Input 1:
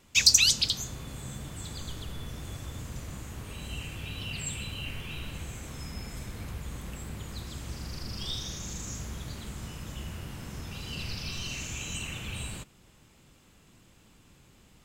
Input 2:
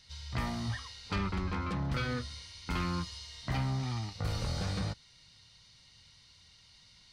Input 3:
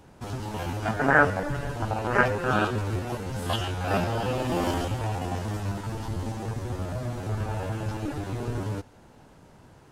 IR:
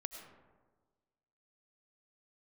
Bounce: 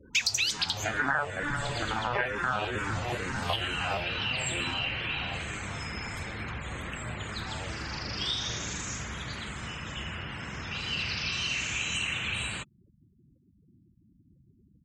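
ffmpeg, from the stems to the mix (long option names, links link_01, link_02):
-filter_complex "[0:a]highpass=63,volume=0dB[link_01];[1:a]alimiter=level_in=12.5dB:limit=-24dB:level=0:latency=1,volume=-12.5dB,adelay=850,volume=-7.5dB[link_02];[2:a]asplit=2[link_03][link_04];[link_04]afreqshift=-2.2[link_05];[link_03][link_05]amix=inputs=2:normalize=1,volume=-1dB,afade=type=out:start_time=3.54:duration=0.64:silence=0.298538[link_06];[link_01][link_02][link_06]amix=inputs=3:normalize=0,afftfilt=real='re*gte(hypot(re,im),0.00355)':imag='im*gte(hypot(re,im),0.00355)':win_size=1024:overlap=0.75,equalizer=frequency=1900:width_type=o:width=2.1:gain=13,acompressor=threshold=-27dB:ratio=4"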